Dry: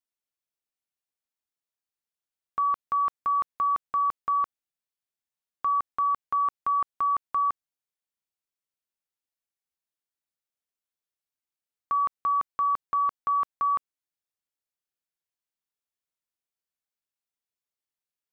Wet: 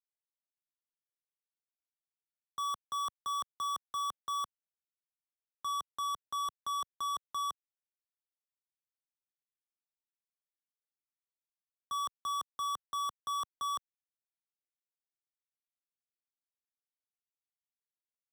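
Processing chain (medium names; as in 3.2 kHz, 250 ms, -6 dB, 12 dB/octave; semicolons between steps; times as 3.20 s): median filter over 15 samples; level held to a coarse grid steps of 17 dB; waveshaping leveller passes 5; level rider gain up to 4.5 dB; three bands expanded up and down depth 40%; trim -8.5 dB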